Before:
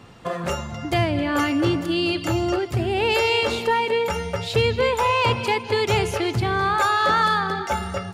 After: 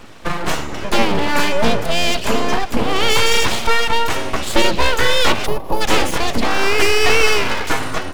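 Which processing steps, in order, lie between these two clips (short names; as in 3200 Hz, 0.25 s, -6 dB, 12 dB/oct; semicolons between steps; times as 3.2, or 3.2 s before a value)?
full-wave rectifier; spectral gain 5.46–5.81, 1200–10000 Hz -17 dB; gain +8.5 dB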